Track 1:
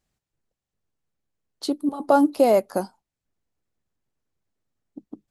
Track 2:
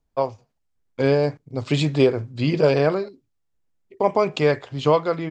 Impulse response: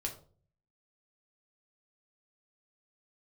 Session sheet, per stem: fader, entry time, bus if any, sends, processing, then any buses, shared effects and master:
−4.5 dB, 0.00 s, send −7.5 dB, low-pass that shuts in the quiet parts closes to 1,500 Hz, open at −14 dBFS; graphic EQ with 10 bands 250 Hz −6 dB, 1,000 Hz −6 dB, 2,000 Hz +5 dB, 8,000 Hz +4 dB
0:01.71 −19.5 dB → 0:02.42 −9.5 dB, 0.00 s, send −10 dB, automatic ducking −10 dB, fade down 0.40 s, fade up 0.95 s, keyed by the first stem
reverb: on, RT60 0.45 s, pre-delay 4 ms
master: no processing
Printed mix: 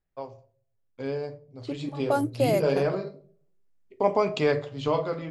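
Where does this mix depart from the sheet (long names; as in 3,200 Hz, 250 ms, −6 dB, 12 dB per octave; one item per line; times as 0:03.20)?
stem 1: send off
reverb return +9.5 dB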